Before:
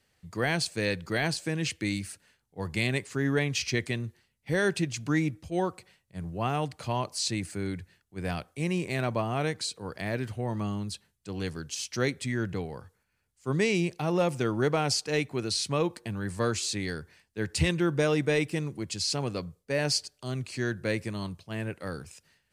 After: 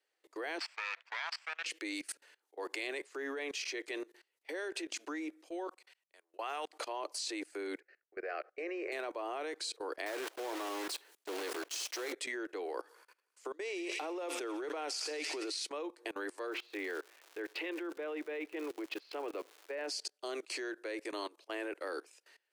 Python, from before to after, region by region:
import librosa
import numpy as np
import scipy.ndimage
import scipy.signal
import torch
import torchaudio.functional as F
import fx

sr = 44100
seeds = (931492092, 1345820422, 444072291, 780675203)

y = fx.chain(x, sr, fx.lower_of_two(delay_ms=0.38),
    fx.highpass(hz=1000.0, slope=24),
    fx.air_absorb(metres=170.0), at=(0.58, 1.66))
y = fx.chain(y, sr, fx.highpass(hz=1300.0, slope=6),
    fx.level_steps(step_db=21), at=(5.67, 6.73))
y = fx.chain(y, sr, fx.lowpass(hz=4300.0, slope=24),
    fx.fixed_phaser(hz=940.0, stages=6), at=(7.8, 8.92))
y = fx.chain(y, sr, fx.block_float(bits=3),
    fx.peak_eq(hz=160.0, db=-13.0, octaves=0.43),
    fx.sustainer(db_per_s=120.0), at=(10.06, 12.14))
y = fx.chain(y, sr, fx.echo_wet_highpass(ms=85, feedback_pct=73, hz=2500.0, wet_db=-10),
    fx.over_compress(threshold_db=-37.0, ratio=-1.0), at=(12.74, 15.61))
y = fx.lowpass(y, sr, hz=3000.0, slope=24, at=(16.46, 19.87), fade=0.02)
y = fx.dmg_crackle(y, sr, seeds[0], per_s=350.0, level_db=-39.0, at=(16.46, 19.87), fade=0.02)
y = scipy.signal.sosfilt(scipy.signal.butter(12, 310.0, 'highpass', fs=sr, output='sos'), y)
y = fx.high_shelf(y, sr, hz=4100.0, db=-5.0)
y = fx.level_steps(y, sr, step_db=23)
y = F.gain(torch.from_numpy(y), 7.0).numpy()